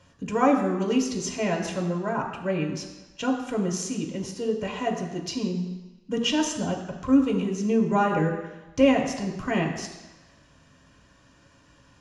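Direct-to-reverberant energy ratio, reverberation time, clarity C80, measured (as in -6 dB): 0.5 dB, 1.1 s, 8.0 dB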